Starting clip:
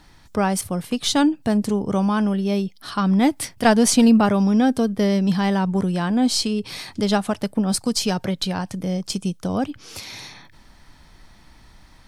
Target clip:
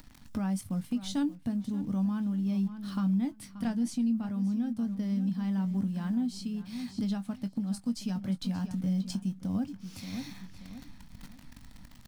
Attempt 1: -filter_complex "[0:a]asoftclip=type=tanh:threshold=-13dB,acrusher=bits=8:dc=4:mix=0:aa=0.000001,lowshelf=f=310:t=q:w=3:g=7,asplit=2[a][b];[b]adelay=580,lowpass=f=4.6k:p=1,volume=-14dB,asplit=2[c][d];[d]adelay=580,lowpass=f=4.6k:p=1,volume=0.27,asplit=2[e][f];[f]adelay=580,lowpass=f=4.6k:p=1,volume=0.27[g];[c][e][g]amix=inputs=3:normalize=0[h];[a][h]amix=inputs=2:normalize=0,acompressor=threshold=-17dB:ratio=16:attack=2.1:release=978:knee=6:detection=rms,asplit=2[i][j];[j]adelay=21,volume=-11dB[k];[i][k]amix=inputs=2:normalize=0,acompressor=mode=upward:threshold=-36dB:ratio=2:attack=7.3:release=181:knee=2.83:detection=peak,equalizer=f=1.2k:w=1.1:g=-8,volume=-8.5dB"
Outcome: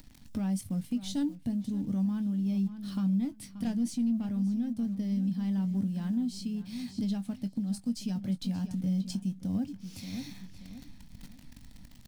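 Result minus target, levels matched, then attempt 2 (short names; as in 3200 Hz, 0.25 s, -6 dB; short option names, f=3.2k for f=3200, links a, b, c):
soft clip: distortion +15 dB; 1000 Hz band -5.5 dB
-filter_complex "[0:a]asoftclip=type=tanh:threshold=-3dB,acrusher=bits=8:dc=4:mix=0:aa=0.000001,lowshelf=f=310:t=q:w=3:g=7,asplit=2[a][b];[b]adelay=580,lowpass=f=4.6k:p=1,volume=-14dB,asplit=2[c][d];[d]adelay=580,lowpass=f=4.6k:p=1,volume=0.27,asplit=2[e][f];[f]adelay=580,lowpass=f=4.6k:p=1,volume=0.27[g];[c][e][g]amix=inputs=3:normalize=0[h];[a][h]amix=inputs=2:normalize=0,acompressor=threshold=-17dB:ratio=16:attack=2.1:release=978:knee=6:detection=rms,asplit=2[i][j];[j]adelay=21,volume=-11dB[k];[i][k]amix=inputs=2:normalize=0,acompressor=mode=upward:threshold=-36dB:ratio=2:attack=7.3:release=181:knee=2.83:detection=peak,volume=-8.5dB"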